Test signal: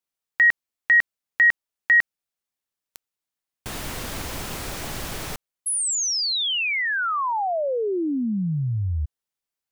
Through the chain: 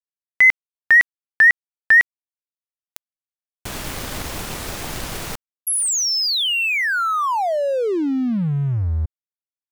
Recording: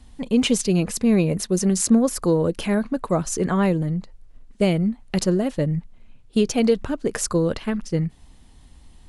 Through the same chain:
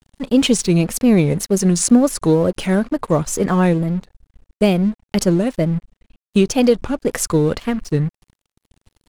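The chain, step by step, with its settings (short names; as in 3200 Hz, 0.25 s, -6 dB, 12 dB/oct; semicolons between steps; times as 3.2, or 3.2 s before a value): wow and flutter 2.1 Hz 140 cents; crossover distortion -42 dBFS; gain +5 dB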